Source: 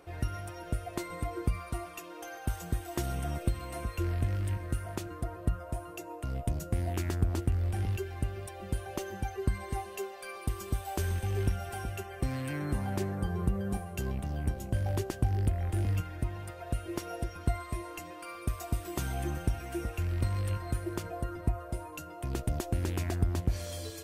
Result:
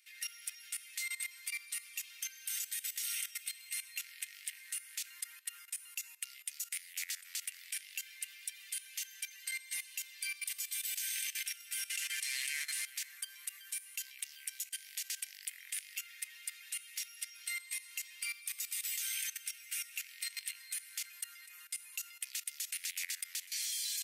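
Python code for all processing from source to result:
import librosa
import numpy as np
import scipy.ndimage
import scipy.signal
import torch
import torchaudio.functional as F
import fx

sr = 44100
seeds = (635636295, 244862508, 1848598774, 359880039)

y = fx.chain(x, sr, fx.cvsd(bps=64000),
    fx.low_shelf(hz=120.0, db=-10.5),
    fx.env_flatten(amount_pct=50), at=(11.9, 12.86))
y = scipy.signal.sosfilt(scipy.signal.ellip(4, 1.0, 80, 2000.0, 'highpass', fs=sr, output='sos'), y)
y = fx.high_shelf(y, sr, hz=4200.0, db=7.5)
y = fx.level_steps(y, sr, step_db=16)
y = F.gain(torch.from_numpy(y), 10.0).numpy()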